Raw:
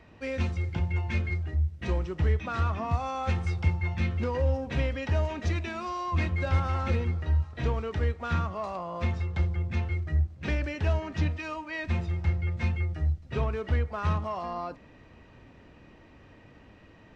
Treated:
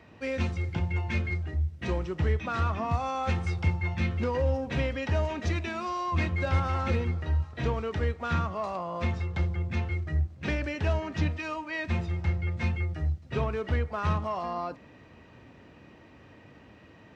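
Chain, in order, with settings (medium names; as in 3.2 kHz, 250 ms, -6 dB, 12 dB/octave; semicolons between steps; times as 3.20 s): high-pass 79 Hz; trim +1.5 dB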